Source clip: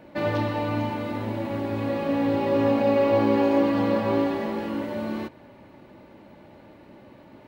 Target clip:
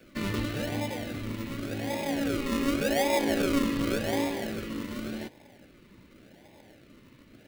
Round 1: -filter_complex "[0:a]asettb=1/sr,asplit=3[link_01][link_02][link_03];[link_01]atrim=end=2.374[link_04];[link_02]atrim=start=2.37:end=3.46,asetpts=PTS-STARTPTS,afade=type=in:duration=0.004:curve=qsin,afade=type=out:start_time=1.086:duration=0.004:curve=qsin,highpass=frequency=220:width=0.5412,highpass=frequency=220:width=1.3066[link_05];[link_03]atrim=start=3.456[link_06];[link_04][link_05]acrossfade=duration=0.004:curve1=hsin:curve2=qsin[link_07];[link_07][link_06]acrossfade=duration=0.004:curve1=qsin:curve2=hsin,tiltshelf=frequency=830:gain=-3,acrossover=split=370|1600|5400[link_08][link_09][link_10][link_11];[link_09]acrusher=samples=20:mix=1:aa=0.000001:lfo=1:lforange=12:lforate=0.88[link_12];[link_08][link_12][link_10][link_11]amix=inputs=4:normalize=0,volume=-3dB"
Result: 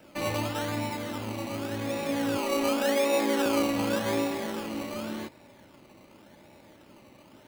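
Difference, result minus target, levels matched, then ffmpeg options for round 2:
sample-and-hold swept by an LFO: distortion −26 dB
-filter_complex "[0:a]asettb=1/sr,asplit=3[link_01][link_02][link_03];[link_01]atrim=end=2.374[link_04];[link_02]atrim=start=2.37:end=3.46,asetpts=PTS-STARTPTS,afade=type=in:duration=0.004:curve=qsin,afade=type=out:start_time=1.086:duration=0.004:curve=qsin,highpass=frequency=220:width=0.5412,highpass=frequency=220:width=1.3066[link_05];[link_03]atrim=start=3.456[link_06];[link_04][link_05]acrossfade=duration=0.004:curve1=hsin:curve2=qsin[link_07];[link_07][link_06]acrossfade=duration=0.004:curve1=qsin:curve2=hsin,tiltshelf=frequency=830:gain=-3,acrossover=split=370|1600|5400[link_08][link_09][link_10][link_11];[link_09]acrusher=samples=43:mix=1:aa=0.000001:lfo=1:lforange=25.8:lforate=0.88[link_12];[link_08][link_12][link_10][link_11]amix=inputs=4:normalize=0,volume=-3dB"

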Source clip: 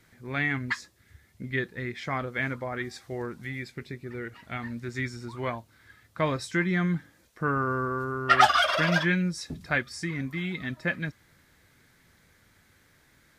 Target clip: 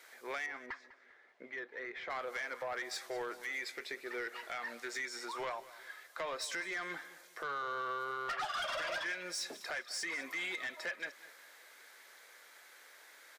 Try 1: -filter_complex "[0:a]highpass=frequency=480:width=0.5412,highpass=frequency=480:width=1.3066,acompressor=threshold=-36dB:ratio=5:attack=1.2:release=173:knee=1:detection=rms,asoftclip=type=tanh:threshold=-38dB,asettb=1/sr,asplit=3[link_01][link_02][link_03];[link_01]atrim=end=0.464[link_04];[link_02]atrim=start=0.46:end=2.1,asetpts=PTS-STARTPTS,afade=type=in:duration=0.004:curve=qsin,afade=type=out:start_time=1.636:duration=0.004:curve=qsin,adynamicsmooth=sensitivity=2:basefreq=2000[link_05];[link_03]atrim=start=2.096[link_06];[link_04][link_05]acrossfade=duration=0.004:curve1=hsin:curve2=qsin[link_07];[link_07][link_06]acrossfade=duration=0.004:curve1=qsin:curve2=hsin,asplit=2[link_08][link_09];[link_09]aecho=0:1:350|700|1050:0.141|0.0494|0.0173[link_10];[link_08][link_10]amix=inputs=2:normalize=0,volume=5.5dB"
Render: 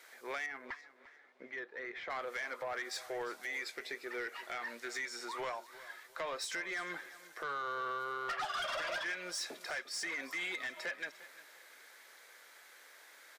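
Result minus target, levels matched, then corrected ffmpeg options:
echo 150 ms late
-filter_complex "[0:a]highpass=frequency=480:width=0.5412,highpass=frequency=480:width=1.3066,acompressor=threshold=-36dB:ratio=5:attack=1.2:release=173:knee=1:detection=rms,asoftclip=type=tanh:threshold=-38dB,asettb=1/sr,asplit=3[link_01][link_02][link_03];[link_01]atrim=end=0.464[link_04];[link_02]atrim=start=0.46:end=2.1,asetpts=PTS-STARTPTS,afade=type=in:duration=0.004:curve=qsin,afade=type=out:start_time=1.636:duration=0.004:curve=qsin,adynamicsmooth=sensitivity=2:basefreq=2000[link_05];[link_03]atrim=start=2.096[link_06];[link_04][link_05]acrossfade=duration=0.004:curve1=hsin:curve2=qsin[link_07];[link_07][link_06]acrossfade=duration=0.004:curve1=qsin:curve2=hsin,asplit=2[link_08][link_09];[link_09]aecho=0:1:200|400|600:0.141|0.0494|0.0173[link_10];[link_08][link_10]amix=inputs=2:normalize=0,volume=5.5dB"

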